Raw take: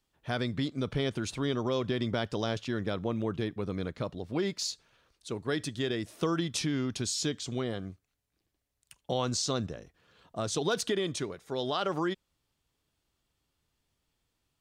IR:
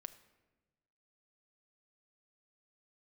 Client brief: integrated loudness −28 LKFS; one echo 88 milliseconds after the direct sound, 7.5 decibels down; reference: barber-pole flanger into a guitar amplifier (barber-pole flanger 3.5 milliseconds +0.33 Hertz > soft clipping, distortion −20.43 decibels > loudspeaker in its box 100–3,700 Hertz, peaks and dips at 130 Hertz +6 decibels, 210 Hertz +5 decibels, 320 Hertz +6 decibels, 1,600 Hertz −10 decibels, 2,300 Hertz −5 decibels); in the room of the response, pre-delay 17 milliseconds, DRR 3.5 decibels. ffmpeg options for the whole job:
-filter_complex "[0:a]aecho=1:1:88:0.422,asplit=2[link_01][link_02];[1:a]atrim=start_sample=2205,adelay=17[link_03];[link_02][link_03]afir=irnorm=-1:irlink=0,volume=1.5dB[link_04];[link_01][link_04]amix=inputs=2:normalize=0,asplit=2[link_05][link_06];[link_06]adelay=3.5,afreqshift=0.33[link_07];[link_05][link_07]amix=inputs=2:normalize=1,asoftclip=threshold=-22.5dB,highpass=100,equalizer=frequency=130:width_type=q:width=4:gain=6,equalizer=frequency=210:width_type=q:width=4:gain=5,equalizer=frequency=320:width_type=q:width=4:gain=6,equalizer=frequency=1600:width_type=q:width=4:gain=-10,equalizer=frequency=2300:width_type=q:width=4:gain=-5,lowpass=frequency=3700:width=0.5412,lowpass=frequency=3700:width=1.3066,volume=5dB"

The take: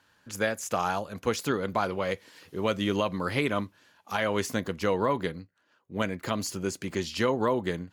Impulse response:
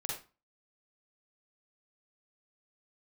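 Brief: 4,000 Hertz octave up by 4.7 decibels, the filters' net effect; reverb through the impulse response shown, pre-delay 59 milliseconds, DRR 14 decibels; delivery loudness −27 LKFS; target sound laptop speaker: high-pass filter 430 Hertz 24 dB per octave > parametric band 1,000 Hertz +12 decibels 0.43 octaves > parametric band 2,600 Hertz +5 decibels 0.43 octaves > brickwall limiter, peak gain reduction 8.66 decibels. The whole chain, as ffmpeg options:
-filter_complex "[0:a]equalizer=frequency=4000:width_type=o:gain=4,asplit=2[link_01][link_02];[1:a]atrim=start_sample=2205,adelay=59[link_03];[link_02][link_03]afir=irnorm=-1:irlink=0,volume=-15.5dB[link_04];[link_01][link_04]amix=inputs=2:normalize=0,highpass=frequency=430:width=0.5412,highpass=frequency=430:width=1.3066,equalizer=frequency=1000:width_type=o:width=0.43:gain=12,equalizer=frequency=2600:width_type=o:width=0.43:gain=5,volume=2.5dB,alimiter=limit=-14dB:level=0:latency=1"

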